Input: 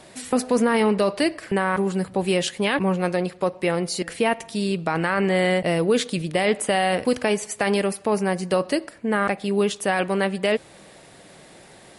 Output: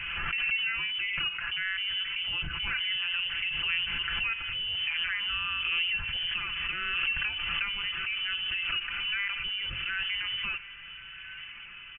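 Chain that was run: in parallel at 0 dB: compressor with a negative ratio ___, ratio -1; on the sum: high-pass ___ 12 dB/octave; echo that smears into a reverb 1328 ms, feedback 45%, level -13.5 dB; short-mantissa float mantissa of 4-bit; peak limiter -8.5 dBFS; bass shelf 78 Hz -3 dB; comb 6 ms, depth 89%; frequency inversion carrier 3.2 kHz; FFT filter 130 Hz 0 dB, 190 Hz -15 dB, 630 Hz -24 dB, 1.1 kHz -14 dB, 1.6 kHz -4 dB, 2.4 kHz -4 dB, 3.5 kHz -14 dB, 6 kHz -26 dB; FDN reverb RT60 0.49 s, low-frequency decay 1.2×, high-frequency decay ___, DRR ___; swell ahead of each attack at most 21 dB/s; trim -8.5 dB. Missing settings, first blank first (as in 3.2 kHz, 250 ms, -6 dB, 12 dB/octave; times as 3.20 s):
-25 dBFS, 61 Hz, 0.9×, 15.5 dB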